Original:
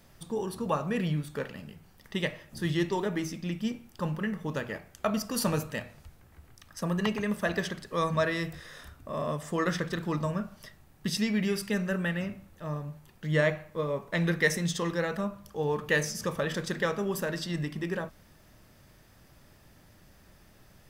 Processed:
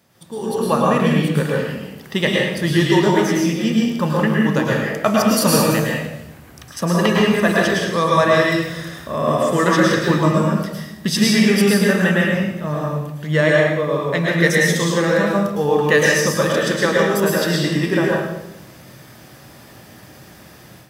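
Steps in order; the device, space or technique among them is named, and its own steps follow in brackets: far laptop microphone (reverberation RT60 0.85 s, pre-delay 101 ms, DRR -3 dB; high-pass 120 Hz; level rider gain up to 12 dB)

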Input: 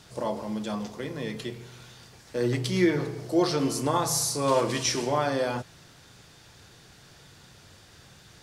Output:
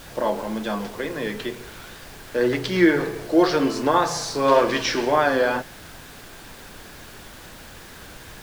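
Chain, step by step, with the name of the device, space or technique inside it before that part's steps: horn gramophone (band-pass 240–3800 Hz; peaking EQ 1.6 kHz +7.5 dB 0.25 oct; wow and flutter; pink noise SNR 19 dB); trim +7 dB

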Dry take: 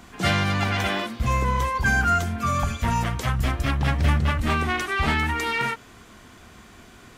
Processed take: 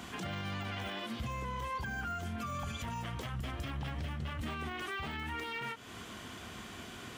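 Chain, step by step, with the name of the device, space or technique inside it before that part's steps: broadcast voice chain (high-pass 73 Hz 12 dB/octave; de-esser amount 85%; compression 4:1, threshold -35 dBFS, peak gain reduction 15 dB; peaking EQ 3.1 kHz +6 dB 0.37 oct; peak limiter -31.5 dBFS, peak gain reduction 10 dB); trim +1 dB

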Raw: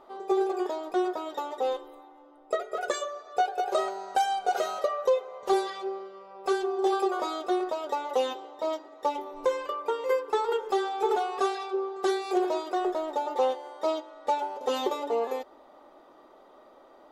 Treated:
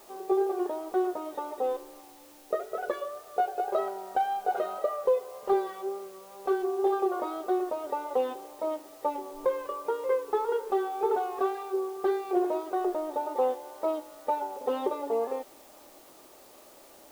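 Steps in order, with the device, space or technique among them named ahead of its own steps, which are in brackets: cassette deck with a dirty head (tape spacing loss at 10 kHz 42 dB; wow and flutter 29 cents; white noise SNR 26 dB); trim +1.5 dB

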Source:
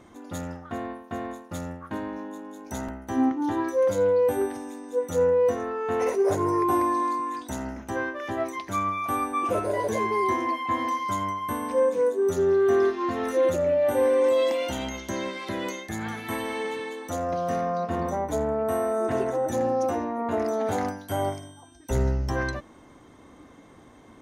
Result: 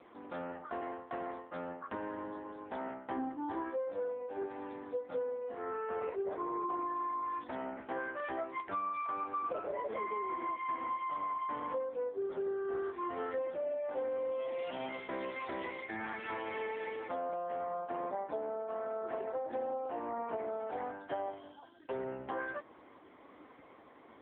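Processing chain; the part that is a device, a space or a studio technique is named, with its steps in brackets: voicemail (band-pass 390–3100 Hz; compression 6:1, threshold -34 dBFS, peak gain reduction 13.5 dB; AMR-NB 6.7 kbps 8 kHz)

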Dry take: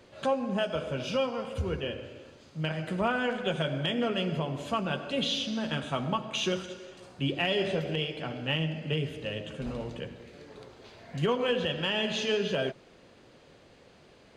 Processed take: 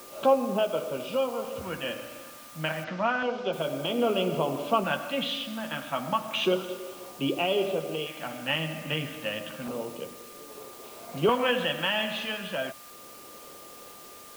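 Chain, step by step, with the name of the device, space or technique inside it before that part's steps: shortwave radio (band-pass 280–2700 Hz; tremolo 0.44 Hz, depth 48%; LFO notch square 0.31 Hz 410–1800 Hz; whistle 1.2 kHz -59 dBFS; white noise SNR 19 dB); 2.84–3.53 s: steep low-pass 5.9 kHz 36 dB/octave; trim +8 dB

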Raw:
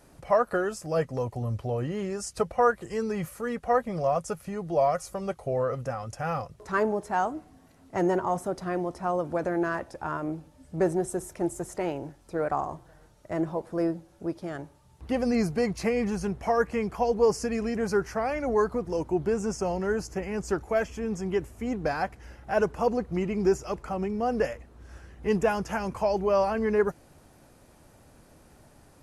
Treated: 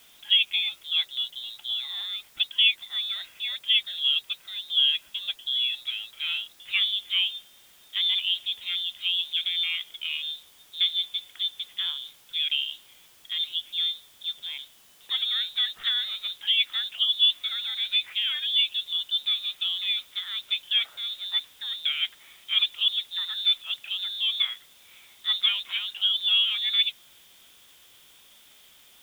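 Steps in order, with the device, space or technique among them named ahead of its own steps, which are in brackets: scrambled radio voice (band-pass 320–2900 Hz; frequency inversion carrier 3.9 kHz; white noise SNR 28 dB); trim +1.5 dB

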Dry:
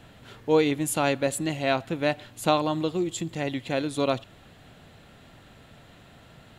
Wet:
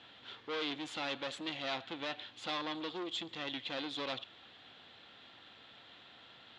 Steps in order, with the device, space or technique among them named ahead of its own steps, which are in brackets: guitar amplifier (valve stage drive 30 dB, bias 0.45; tone controls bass -15 dB, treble +8 dB; cabinet simulation 76–4200 Hz, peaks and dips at 160 Hz -5 dB, 420 Hz -4 dB, 620 Hz -7 dB, 3.4 kHz +7 dB); trim -2 dB

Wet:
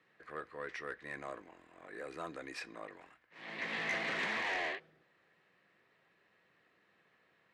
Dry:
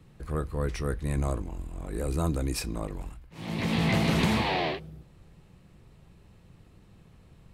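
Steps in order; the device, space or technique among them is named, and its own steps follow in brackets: intercom (band-pass 470–4200 Hz; peaking EQ 1.8 kHz +12 dB 0.57 oct; saturation -20.5 dBFS, distortion -17 dB); band-stop 860 Hz, Q 14; trim -8 dB

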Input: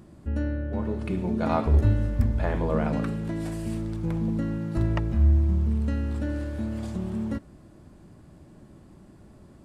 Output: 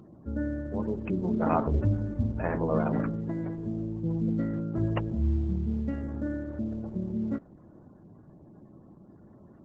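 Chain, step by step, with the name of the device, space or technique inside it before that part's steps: 3.03–3.58 s: high-pass 50 Hz 12 dB/octave; noise-suppressed video call (high-pass 110 Hz 12 dB/octave; spectral gate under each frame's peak -25 dB strong; Opus 12 kbps 48 kHz)

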